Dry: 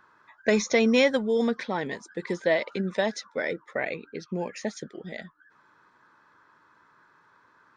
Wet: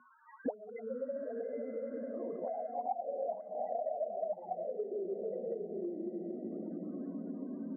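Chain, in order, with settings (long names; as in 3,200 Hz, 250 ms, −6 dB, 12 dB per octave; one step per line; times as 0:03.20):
convolution reverb RT60 3.0 s, pre-delay 6 ms, DRR −3.5 dB
in parallel at +3 dB: downward compressor 12 to 1, threshold −27 dBFS, peak gain reduction 16 dB
on the sum: delay with pitch and tempo change per echo 245 ms, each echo +2 semitones, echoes 2
0:02.66–0:03.29: formant resonators in series a
spectral peaks only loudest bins 4
0:04.63–0:05.21: spectral tilt +4.5 dB per octave
feedback delay with all-pass diffusion 904 ms, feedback 57%, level −9.5 dB
envelope filter 240–1,400 Hz, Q 17, up, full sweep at −16 dBFS
multiband upward and downward compressor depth 100%
level +2 dB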